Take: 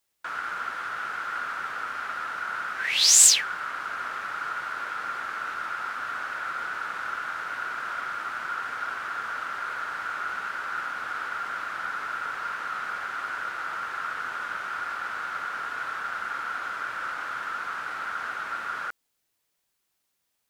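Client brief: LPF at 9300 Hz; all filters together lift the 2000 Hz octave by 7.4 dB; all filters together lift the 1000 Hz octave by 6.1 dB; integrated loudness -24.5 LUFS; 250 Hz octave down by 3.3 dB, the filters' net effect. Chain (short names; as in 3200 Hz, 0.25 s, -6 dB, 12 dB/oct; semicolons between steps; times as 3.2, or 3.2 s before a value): LPF 9300 Hz; bell 250 Hz -5 dB; bell 1000 Hz +4 dB; bell 2000 Hz +9 dB; gain -1 dB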